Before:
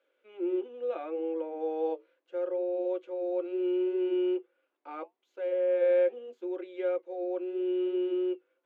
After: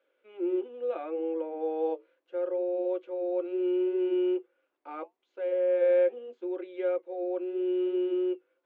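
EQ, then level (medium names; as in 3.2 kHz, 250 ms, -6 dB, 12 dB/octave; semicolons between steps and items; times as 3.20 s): distance through air 120 m; +1.5 dB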